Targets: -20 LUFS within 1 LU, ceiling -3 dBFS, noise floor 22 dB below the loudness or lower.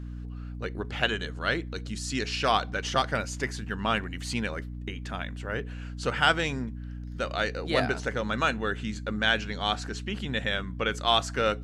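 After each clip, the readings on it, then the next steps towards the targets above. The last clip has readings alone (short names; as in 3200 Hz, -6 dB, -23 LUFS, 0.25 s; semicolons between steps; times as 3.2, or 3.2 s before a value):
hum 60 Hz; harmonics up to 300 Hz; hum level -35 dBFS; loudness -29.0 LUFS; peak -7.5 dBFS; loudness target -20.0 LUFS
-> notches 60/120/180/240/300 Hz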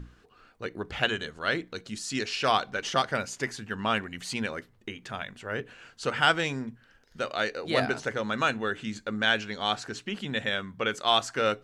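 hum none; loudness -29.5 LUFS; peak -8.0 dBFS; loudness target -20.0 LUFS
-> gain +9.5 dB; limiter -3 dBFS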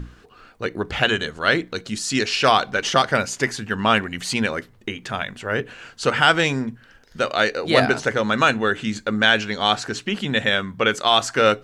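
loudness -20.5 LUFS; peak -3.0 dBFS; noise floor -52 dBFS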